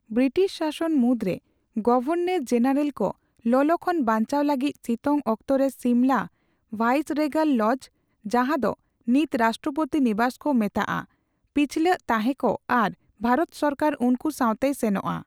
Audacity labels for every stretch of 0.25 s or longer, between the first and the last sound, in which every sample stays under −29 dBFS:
1.360000	1.770000	silence
3.110000	3.460000	silence
6.230000	6.730000	silence
7.760000	8.260000	silence
8.730000	9.080000	silence
11.000000	11.560000	silence
12.910000	13.240000	silence